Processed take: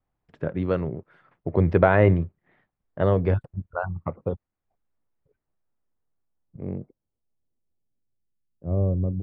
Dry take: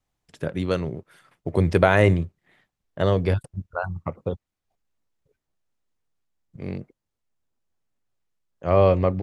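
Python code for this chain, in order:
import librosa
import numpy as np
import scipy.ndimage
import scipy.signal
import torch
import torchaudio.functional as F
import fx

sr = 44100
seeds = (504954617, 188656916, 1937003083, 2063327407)

y = fx.filter_sweep_lowpass(x, sr, from_hz=1700.0, to_hz=230.0, start_s=5.55, end_s=8.96, q=0.7)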